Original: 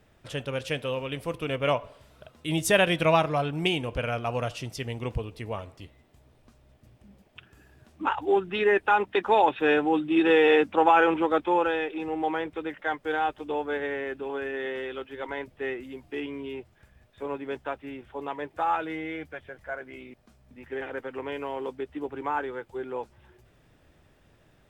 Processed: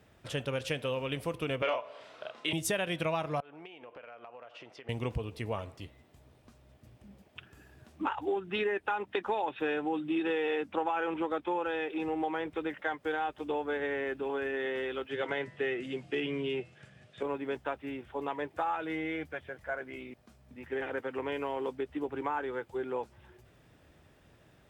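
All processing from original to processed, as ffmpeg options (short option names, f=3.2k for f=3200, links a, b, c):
-filter_complex "[0:a]asettb=1/sr,asplit=3[a][b][c];[a]atrim=end=1.624[d];[b]atrim=start=1.62:end=2.53,asetpts=PTS-STARTPTS,afade=t=in:d=0.004:c=qsin,afade=t=out:st=0.906:d=0.004:c=qsin,highpass=460,lowpass=4.4k,asplit=2[e][f];[f]adelay=31,volume=-2.5dB[g];[e][g]amix=inputs=2:normalize=0,atrim=end_sample=40131,acontrast=68[h];[c]atrim=start=2.526[i];[d][h]acrossfade=d=0.004:c1=hsin:c2=qsin[j];[j][i]acrossfade=d=0.004:c1=qsin:c2=hsin,asettb=1/sr,asplit=3[k][l][m];[k]atrim=end=3.404[n];[l]atrim=start=3.4:end=4.89,asetpts=PTS-STARTPTS,afade=t=in:d=0.004:c=qsin,afade=t=out:st=1.486:d=0.004:c=qsin,highpass=490,lowpass=2.1k,acompressor=threshold=-44dB:ratio=20:attack=3.2:release=140:knee=1:detection=peak[o];[m]atrim=start=4.886[p];[n][o]acrossfade=d=0.004:c1=hsin:c2=qsin[q];[q][p]acrossfade=d=0.004:c1=qsin:c2=hsin,asettb=1/sr,asplit=3[r][s][t];[r]atrim=end=15.094[u];[s]atrim=start=15.09:end=17.23,asetpts=PTS-STARTPTS,afade=t=in:d=0.004:c=qsin,afade=t=out:st=2.136:d=0.004:c=qsin,bandreject=f=165.5:t=h:w=4,bandreject=f=331:t=h:w=4,bandreject=f=496.5:t=h:w=4,bandreject=f=662:t=h:w=4,bandreject=f=827.5:t=h:w=4,bandreject=f=993:t=h:w=4,bandreject=f=1.1585k:t=h:w=4,bandreject=f=1.324k:t=h:w=4,bandreject=f=1.4895k:t=h:w=4,bandreject=f=1.655k:t=h:w=4,bandreject=f=1.8205k:t=h:w=4,bandreject=f=1.986k:t=h:w=4,bandreject=f=2.1515k:t=h:w=4,bandreject=f=2.317k:t=h:w=4,bandreject=f=2.4825k:t=h:w=4,bandreject=f=2.648k:t=h:w=4,acontrast=30,highpass=f=110:w=0.5412,highpass=f=110:w=1.3066,equalizer=f=150:t=q:w=4:g=7,equalizer=f=270:t=q:w=4:g=-4,equalizer=f=960:t=q:w=4:g=-8,equalizer=f=3k:t=q:w=4:g=4,lowpass=f=8.8k:w=0.5412,lowpass=f=8.8k:w=1.3066[v];[t]atrim=start=17.226[w];[u][v]acrossfade=d=0.004:c1=hsin:c2=qsin[x];[x][w]acrossfade=d=0.004:c1=qsin:c2=hsin,highpass=51,acompressor=threshold=-29dB:ratio=6"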